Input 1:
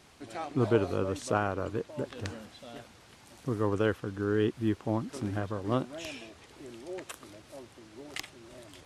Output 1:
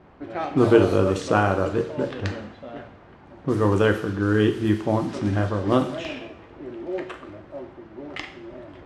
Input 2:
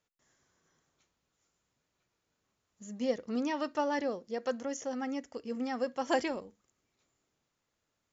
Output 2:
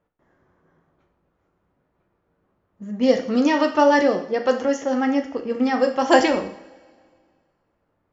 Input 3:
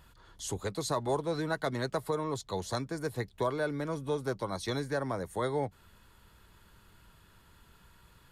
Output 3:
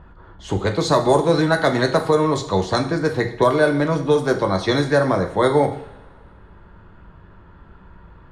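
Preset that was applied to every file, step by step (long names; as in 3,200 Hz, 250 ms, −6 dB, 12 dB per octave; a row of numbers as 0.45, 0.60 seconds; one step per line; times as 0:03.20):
low-pass that shuts in the quiet parts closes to 1,100 Hz, open at −26 dBFS
coupled-rooms reverb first 0.58 s, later 2 s, from −20 dB, DRR 4.5 dB
normalise the peak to −3 dBFS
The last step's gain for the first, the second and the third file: +8.5, +13.5, +14.0 decibels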